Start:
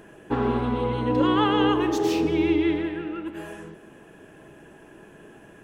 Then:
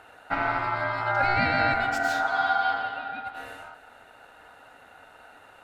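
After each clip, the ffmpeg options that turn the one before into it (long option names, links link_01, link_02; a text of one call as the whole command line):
ffmpeg -i in.wav -af "aeval=exprs='val(0)*sin(2*PI*1100*n/s)':channel_layout=same" out.wav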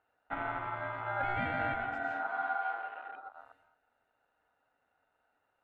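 ffmpeg -i in.wav -af "afwtdn=0.0224,highshelf=frequency=3400:gain=-9.5,volume=-9dB" out.wav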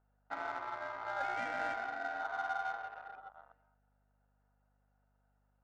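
ffmpeg -i in.wav -af "highpass=410,adynamicsmooth=sensitivity=6:basefreq=1600,aeval=exprs='val(0)+0.000251*(sin(2*PI*50*n/s)+sin(2*PI*2*50*n/s)/2+sin(2*PI*3*50*n/s)/3+sin(2*PI*4*50*n/s)/4+sin(2*PI*5*50*n/s)/5)':channel_layout=same,volume=-2.5dB" out.wav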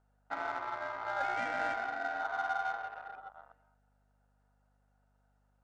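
ffmpeg -i in.wav -af "aresample=22050,aresample=44100,volume=3dB" out.wav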